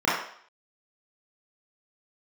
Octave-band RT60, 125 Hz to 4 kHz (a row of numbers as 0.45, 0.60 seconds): 0.35, 0.45, 0.55, 0.60, 0.60, 0.60 seconds